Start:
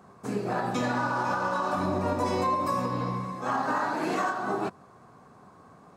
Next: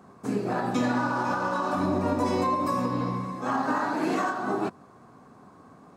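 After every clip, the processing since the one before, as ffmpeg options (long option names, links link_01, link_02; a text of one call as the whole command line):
ffmpeg -i in.wav -af "equalizer=frequency=270:width_type=o:width=0.69:gain=6" out.wav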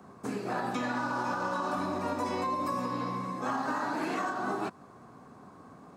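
ffmpeg -i in.wav -filter_complex "[0:a]acrossover=split=160|800|3200[link_01][link_02][link_03][link_04];[link_01]acompressor=threshold=-50dB:ratio=4[link_05];[link_02]acompressor=threshold=-35dB:ratio=4[link_06];[link_03]acompressor=threshold=-33dB:ratio=4[link_07];[link_04]acompressor=threshold=-50dB:ratio=4[link_08];[link_05][link_06][link_07][link_08]amix=inputs=4:normalize=0" out.wav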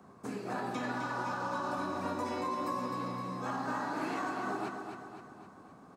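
ffmpeg -i in.wav -af "aecho=1:1:258|516|774|1032|1290|1548:0.473|0.241|0.123|0.0628|0.032|0.0163,volume=-4.5dB" out.wav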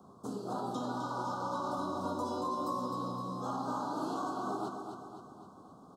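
ffmpeg -i in.wav -af "asuperstop=centerf=2100:order=8:qfactor=1.1" out.wav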